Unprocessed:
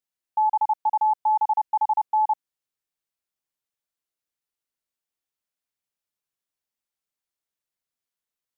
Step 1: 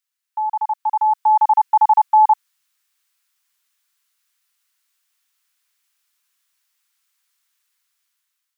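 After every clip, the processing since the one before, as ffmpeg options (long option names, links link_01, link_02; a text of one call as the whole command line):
ffmpeg -i in.wav -af "highpass=frequency=1100:width=0.5412,highpass=frequency=1100:width=1.3066,dynaudnorm=framelen=470:gausssize=5:maxgain=11dB,volume=7.5dB" out.wav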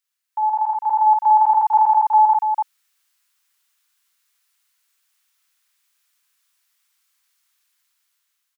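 ffmpeg -i in.wav -af "aecho=1:1:52.48|288.6:0.708|0.398,alimiter=limit=-8dB:level=0:latency=1:release=239" out.wav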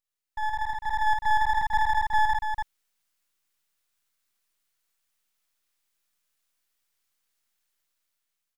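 ffmpeg -i in.wav -af "aeval=exprs='max(val(0),0)':channel_layout=same,volume=-5dB" out.wav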